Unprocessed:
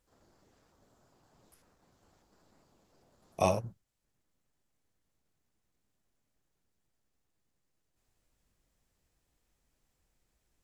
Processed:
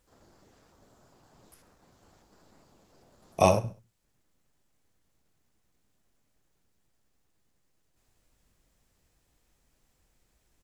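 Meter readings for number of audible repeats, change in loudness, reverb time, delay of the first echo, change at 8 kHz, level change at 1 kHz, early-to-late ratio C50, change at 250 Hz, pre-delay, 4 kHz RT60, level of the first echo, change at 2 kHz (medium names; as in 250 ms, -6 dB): 3, +6.5 dB, no reverb, 67 ms, +6.5 dB, +6.5 dB, no reverb, +6.5 dB, no reverb, no reverb, -20.0 dB, +6.5 dB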